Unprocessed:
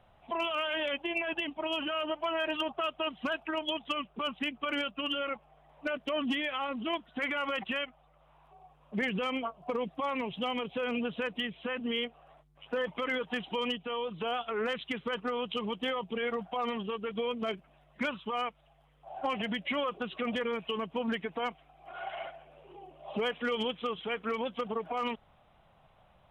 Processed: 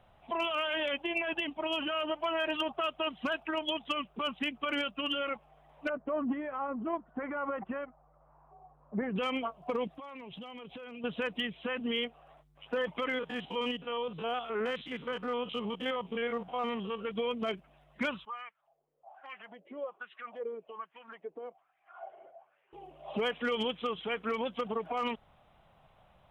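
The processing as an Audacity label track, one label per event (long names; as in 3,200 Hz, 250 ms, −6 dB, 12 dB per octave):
5.890000	9.160000	low-pass filter 1,400 Hz 24 dB per octave
9.870000	11.040000	downward compressor 8 to 1, threshold −42 dBFS
13.090000	17.050000	spectrum averaged block by block every 50 ms
18.250000	22.730000	LFO wah 1.2 Hz 380–1,900 Hz, Q 4.3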